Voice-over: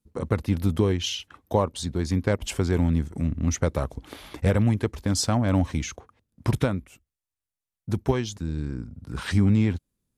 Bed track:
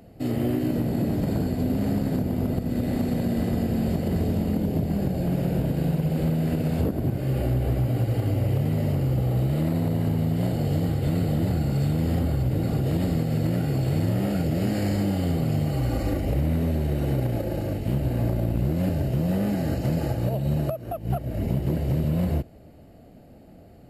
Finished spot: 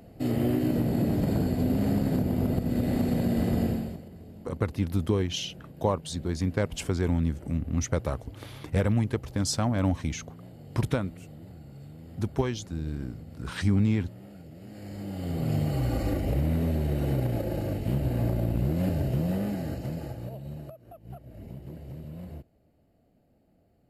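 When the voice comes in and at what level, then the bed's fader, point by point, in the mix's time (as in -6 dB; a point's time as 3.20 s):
4.30 s, -3.5 dB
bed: 3.68 s -1 dB
4.11 s -22 dB
14.61 s -22 dB
15.52 s -2.5 dB
19.15 s -2.5 dB
20.76 s -17 dB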